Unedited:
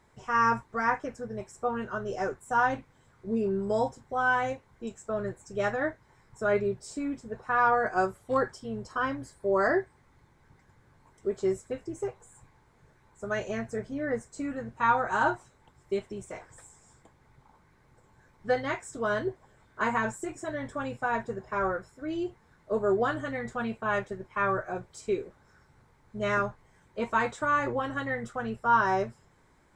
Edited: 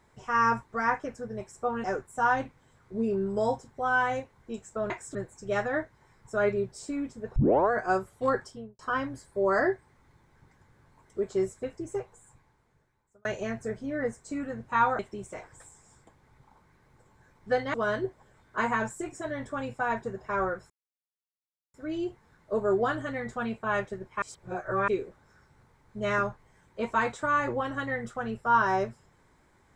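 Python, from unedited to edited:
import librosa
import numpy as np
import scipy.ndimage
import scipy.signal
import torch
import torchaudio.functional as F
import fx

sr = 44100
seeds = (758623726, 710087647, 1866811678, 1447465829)

y = fx.studio_fade_out(x, sr, start_s=8.54, length_s=0.33)
y = fx.edit(y, sr, fx.cut(start_s=1.84, length_s=0.33),
    fx.tape_start(start_s=7.44, length_s=0.35),
    fx.fade_out_span(start_s=12.06, length_s=1.27),
    fx.cut(start_s=15.07, length_s=0.9),
    fx.move(start_s=18.72, length_s=0.25, to_s=5.23),
    fx.insert_silence(at_s=21.93, length_s=1.04),
    fx.reverse_span(start_s=24.41, length_s=0.66), tone=tone)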